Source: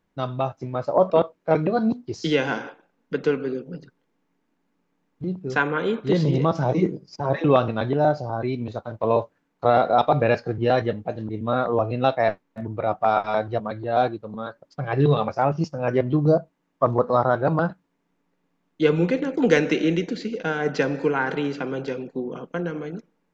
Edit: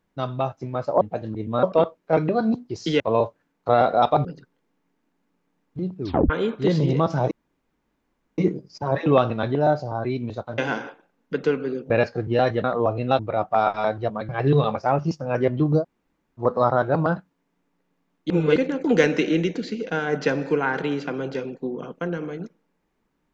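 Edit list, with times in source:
2.38–3.70 s: swap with 8.96–10.21 s
5.46 s: tape stop 0.29 s
6.76 s: insert room tone 1.07 s
10.95–11.57 s: move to 1.01 s
12.12–12.69 s: delete
13.79–14.82 s: delete
16.33–16.95 s: room tone, crossfade 0.10 s
18.83–19.09 s: reverse

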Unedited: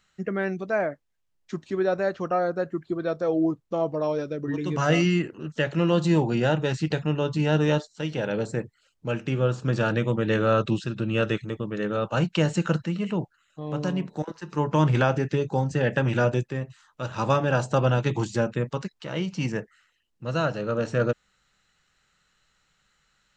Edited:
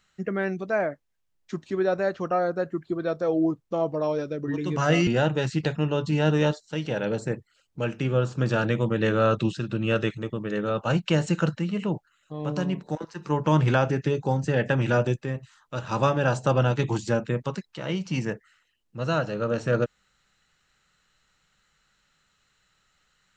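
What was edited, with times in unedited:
5.07–6.34 s: delete

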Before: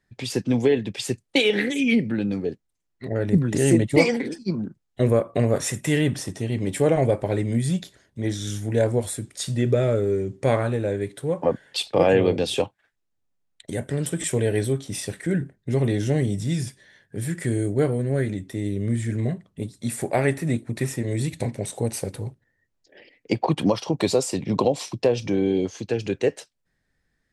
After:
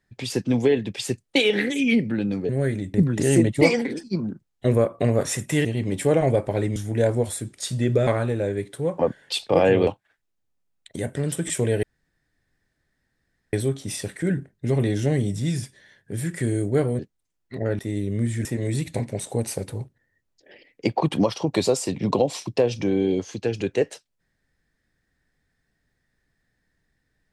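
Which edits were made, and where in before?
2.49–3.29 s: swap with 18.03–18.48 s
6.00–6.40 s: delete
7.51–8.53 s: delete
9.84–10.51 s: delete
12.31–12.61 s: delete
14.57 s: insert room tone 1.70 s
19.14–20.91 s: delete

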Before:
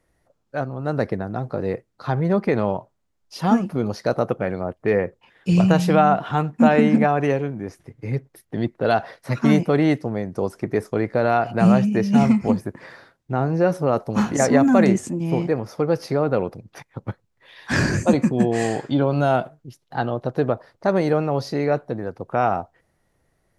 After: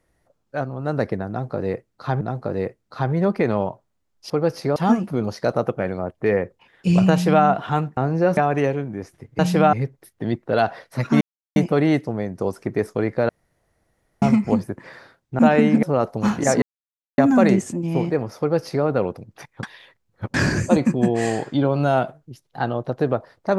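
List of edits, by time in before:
1.29–2.21 s: loop, 2 plays
5.73–6.07 s: copy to 8.05 s
6.59–7.03 s: swap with 13.36–13.76 s
9.53 s: insert silence 0.35 s
11.26–12.19 s: room tone
14.55 s: insert silence 0.56 s
15.76–16.22 s: copy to 3.38 s
17.00–17.71 s: reverse

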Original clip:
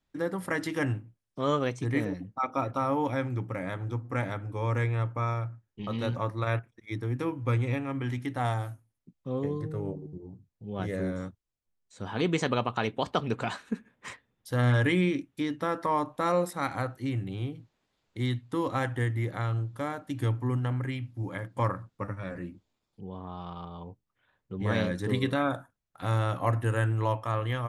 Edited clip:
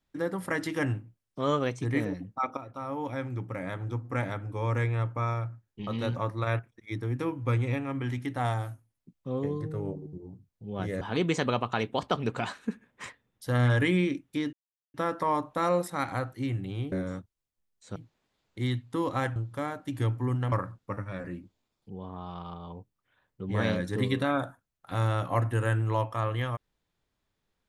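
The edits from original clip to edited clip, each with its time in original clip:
2.57–4.20 s: fade in equal-power, from -15 dB
11.01–12.05 s: move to 17.55 s
15.57 s: insert silence 0.41 s
18.95–19.58 s: delete
20.74–21.63 s: delete

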